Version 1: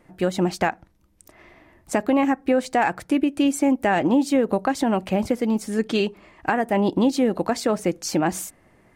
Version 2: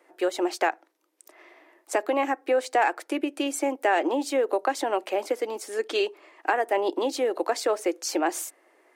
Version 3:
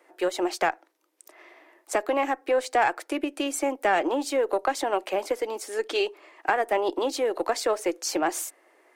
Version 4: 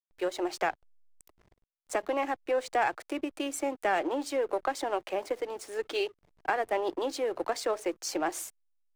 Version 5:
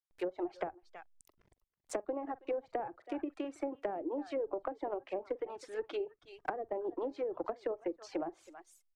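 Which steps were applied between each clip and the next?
steep high-pass 320 Hz 48 dB/oct; gain -1.5 dB
one diode to ground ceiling -13 dBFS; low shelf 180 Hz -7.5 dB; gain +1.5 dB
backlash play -38 dBFS; gain -5 dB
tapped delay 44/323 ms -13.5/-17.5 dB; reverb removal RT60 0.68 s; treble ducked by the level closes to 510 Hz, closed at -26.5 dBFS; gain -4 dB

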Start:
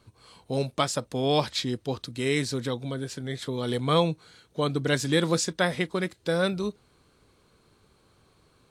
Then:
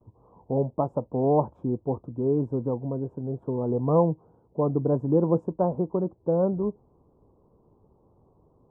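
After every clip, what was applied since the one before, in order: gate with hold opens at -55 dBFS; elliptic low-pass 960 Hz, stop band 50 dB; gain +3 dB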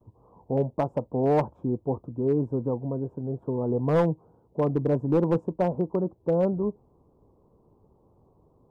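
hard clip -15.5 dBFS, distortion -18 dB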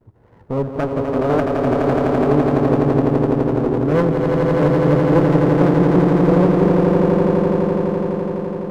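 swelling echo 84 ms, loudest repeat 8, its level -4.5 dB; running maximum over 17 samples; gain +4.5 dB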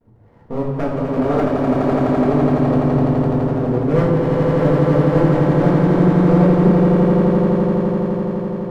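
shoebox room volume 330 m³, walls mixed, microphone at 1.7 m; gain -5.5 dB

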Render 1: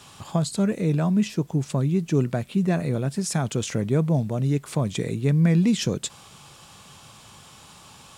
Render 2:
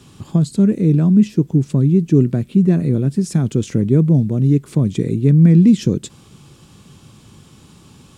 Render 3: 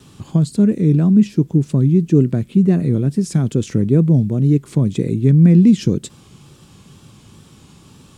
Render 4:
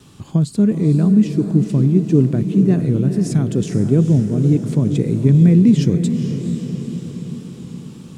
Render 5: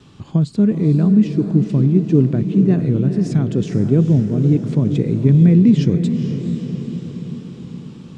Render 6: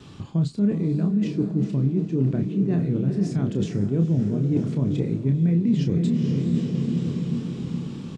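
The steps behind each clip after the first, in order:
resonant low shelf 480 Hz +11 dB, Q 1.5; gain -3 dB
wow and flutter 62 cents
diffused feedback echo 0.463 s, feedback 62%, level -8.5 dB; gain -1 dB
LPF 4800 Hz 12 dB/oct
reverse; compressor 6:1, threshold -22 dBFS, peak gain reduction 14 dB; reverse; doubler 30 ms -6.5 dB; gain +1.5 dB

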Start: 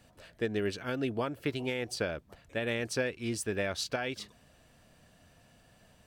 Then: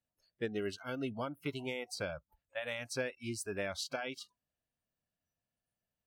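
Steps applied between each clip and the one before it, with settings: spectral noise reduction 27 dB; gain -4.5 dB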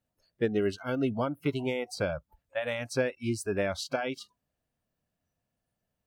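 tilt shelf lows +4 dB, about 1400 Hz; gain +6 dB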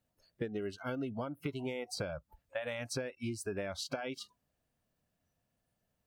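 compressor 10:1, threshold -36 dBFS, peak gain reduction 14.5 dB; gain +1.5 dB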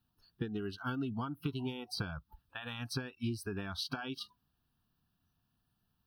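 fixed phaser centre 2100 Hz, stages 6; gain +4.5 dB

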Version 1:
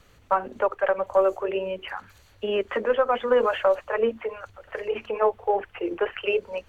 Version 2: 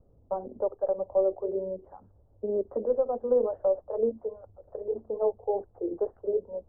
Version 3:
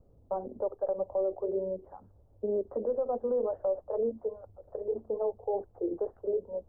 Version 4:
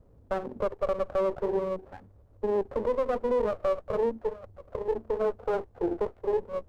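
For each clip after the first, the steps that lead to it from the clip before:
inverse Chebyshev low-pass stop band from 2300 Hz, stop band 60 dB; gain -3 dB
limiter -22.5 dBFS, peak gain reduction 8 dB
running maximum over 17 samples; gain +4 dB

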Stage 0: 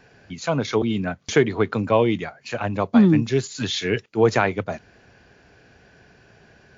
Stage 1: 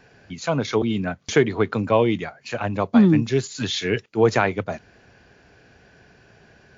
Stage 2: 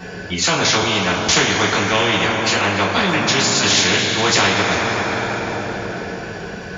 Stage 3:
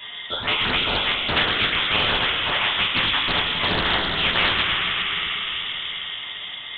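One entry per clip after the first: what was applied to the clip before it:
nothing audible
two-slope reverb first 0.21 s, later 4.3 s, from -21 dB, DRR -6 dB; spectral compressor 4:1; gain -7 dB
inverted band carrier 3600 Hz; Doppler distortion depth 0.25 ms; gain -4 dB

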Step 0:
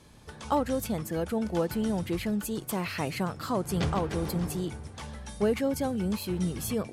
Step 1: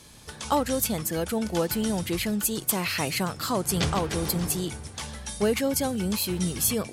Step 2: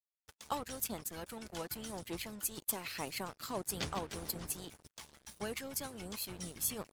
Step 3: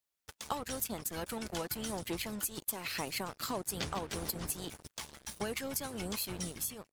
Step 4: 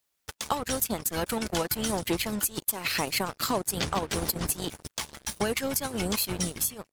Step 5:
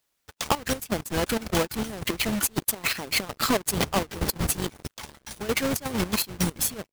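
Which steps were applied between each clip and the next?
high shelf 2500 Hz +11.5 dB; gain +1.5 dB
crossover distortion -36 dBFS; wow and flutter 23 cents; harmonic-percussive split harmonic -10 dB; gain -8.5 dB
ending faded out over 0.55 s; compressor 5:1, threshold -41 dBFS, peak gain reduction 11.5 dB; gain +8 dB
transient shaper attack +1 dB, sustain -7 dB; in parallel at +1 dB: limiter -25 dBFS, peak gain reduction 8 dB; on the sum: gain +3 dB
half-waves squared off; step gate "xxx.xx.x..x." 164 bpm -12 dB

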